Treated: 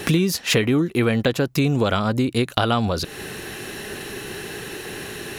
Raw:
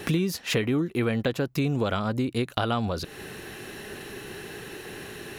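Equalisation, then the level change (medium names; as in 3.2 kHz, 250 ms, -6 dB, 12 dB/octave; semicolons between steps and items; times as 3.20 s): peaking EQ 7.7 kHz +3.5 dB 2.3 oct; +6.0 dB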